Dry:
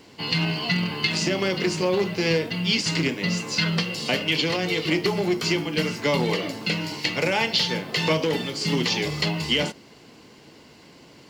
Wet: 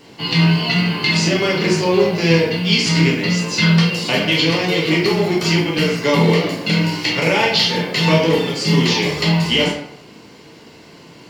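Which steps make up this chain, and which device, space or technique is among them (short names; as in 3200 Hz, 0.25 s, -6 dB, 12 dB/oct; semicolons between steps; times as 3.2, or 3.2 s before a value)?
bathroom (reverb RT60 0.70 s, pre-delay 7 ms, DRR -3 dB); gain +2.5 dB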